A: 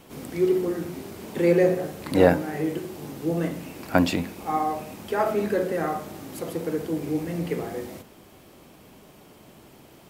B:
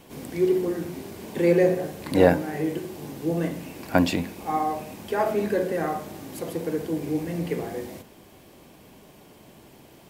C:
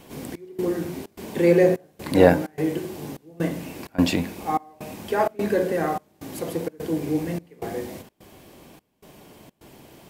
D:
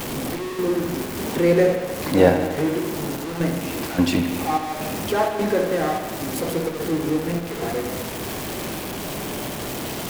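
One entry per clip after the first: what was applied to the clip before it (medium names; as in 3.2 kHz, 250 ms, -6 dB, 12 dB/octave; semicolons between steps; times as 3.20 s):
band-stop 1.3 kHz, Q 9.7
trance gate "xxx..xxxx.xx" 128 bpm -24 dB; trim +2.5 dB
jump at every zero crossing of -23 dBFS; transient shaper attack +1 dB, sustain -5 dB; bucket-brigade echo 77 ms, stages 2048, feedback 71%, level -9 dB; trim -1.5 dB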